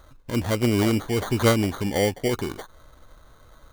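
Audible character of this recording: aliases and images of a low sample rate 2.6 kHz, jitter 0%

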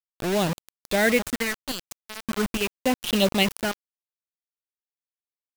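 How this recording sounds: phasing stages 4, 0.39 Hz, lowest notch 380–1600 Hz; random-step tremolo, depth 85%; a quantiser's noise floor 6-bit, dither none

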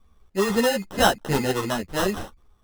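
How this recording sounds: aliases and images of a low sample rate 2.3 kHz, jitter 0%; a shimmering, thickened sound

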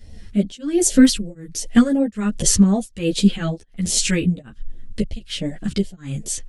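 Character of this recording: phasing stages 2, 2.6 Hz, lowest notch 620–1300 Hz; tremolo triangle 1.3 Hz, depth 100%; a shimmering, thickened sound

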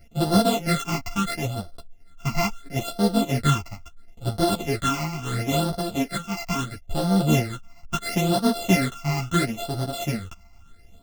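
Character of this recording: a buzz of ramps at a fixed pitch in blocks of 64 samples; phasing stages 8, 0.74 Hz, lowest notch 470–2300 Hz; tremolo saw down 7.6 Hz, depth 30%; a shimmering, thickened sound

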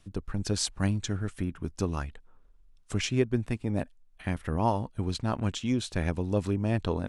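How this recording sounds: noise floor -59 dBFS; spectral tilt -5.5 dB/octave

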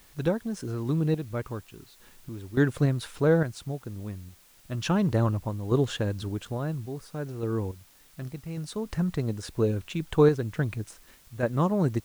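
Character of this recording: random-step tremolo, depth 85%; a quantiser's noise floor 10-bit, dither triangular

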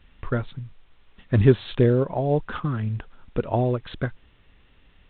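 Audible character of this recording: a quantiser's noise floor 10-bit, dither triangular; A-law

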